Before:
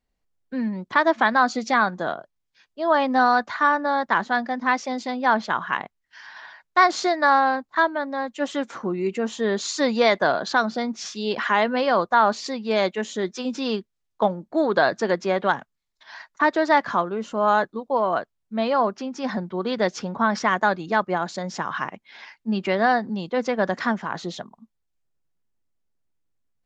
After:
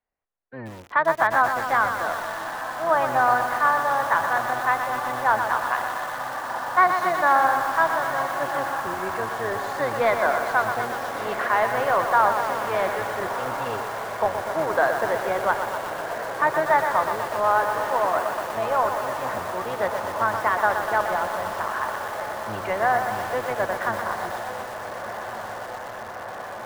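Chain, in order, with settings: octaver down 1 oct, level +3 dB; three-band isolator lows -19 dB, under 480 Hz, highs -23 dB, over 2300 Hz; on a send: diffused feedback echo 1.367 s, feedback 79%, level -10 dB; on the sum: lo-fi delay 0.122 s, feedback 80%, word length 6-bit, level -7 dB

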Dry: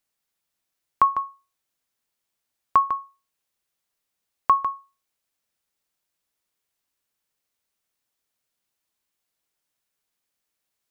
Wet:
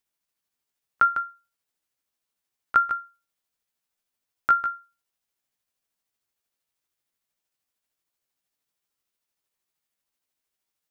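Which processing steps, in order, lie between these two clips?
delay-line pitch shifter +4 st; gain -1 dB

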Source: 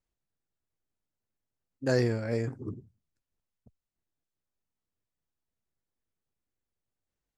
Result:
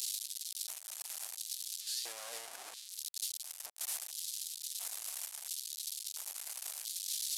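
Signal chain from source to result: delta modulation 64 kbps, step -26 dBFS; LFO high-pass square 0.73 Hz 710–3900 Hz; pre-emphasis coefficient 0.9; gain -2 dB

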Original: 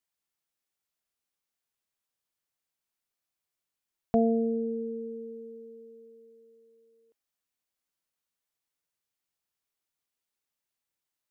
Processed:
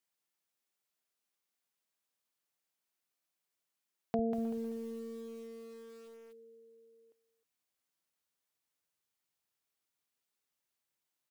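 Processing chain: HPF 150 Hz 12 dB/oct, from 4.19 s 66 Hz; compressor 1.5:1, threshold -45 dBFS, peak gain reduction 9 dB; speakerphone echo 0.31 s, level -16 dB; lo-fi delay 0.192 s, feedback 35%, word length 9-bit, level -6.5 dB

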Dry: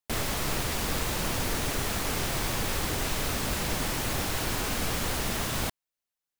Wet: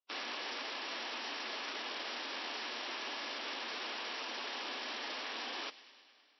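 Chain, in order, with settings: three-band isolator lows -14 dB, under 580 Hz, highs -15 dB, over 2100 Hz; vocal rider 0.5 s; ring modulator 1900 Hz; wrapped overs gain 32.5 dB; formant-preserving pitch shift -2 st; brick-wall FIR band-pass 220–5800 Hz; thin delay 0.103 s, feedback 75%, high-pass 1900 Hz, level -18 dB; digital reverb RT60 2.9 s, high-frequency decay 0.85×, pre-delay 60 ms, DRR 19.5 dB; gain +1.5 dB

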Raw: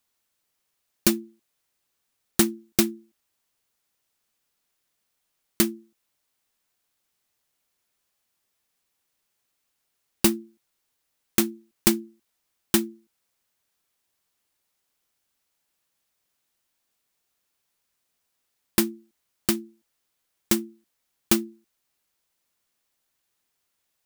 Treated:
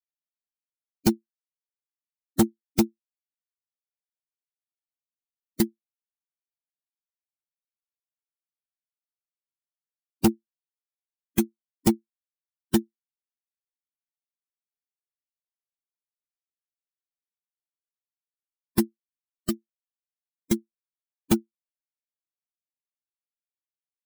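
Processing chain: per-bin expansion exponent 3; low shelf 470 Hz +11.5 dB; hard clip -13 dBFS, distortion -9 dB

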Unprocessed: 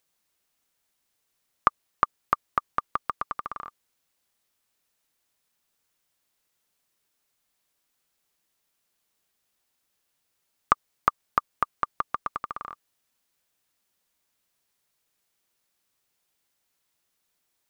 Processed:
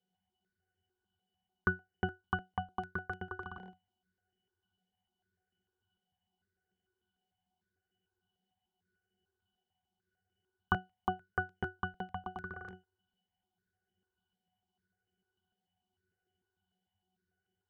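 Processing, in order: octave resonator F#, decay 0.2 s; step phaser 6.7 Hz 320–4100 Hz; gain +16 dB

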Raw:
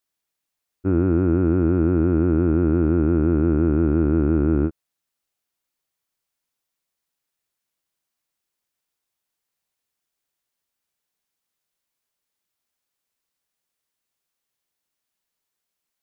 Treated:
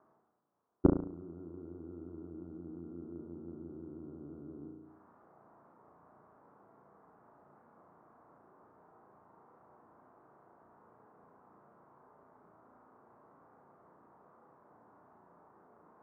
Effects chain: HPF 140 Hz 12 dB/oct; flipped gate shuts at -20 dBFS, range -39 dB; steep low-pass 1200 Hz 36 dB/oct; flutter echo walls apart 6 m, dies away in 0.51 s; reverse; upward compressor, threshold -53 dBFS; reverse; notch 540 Hz, Q 17; gain +9.5 dB

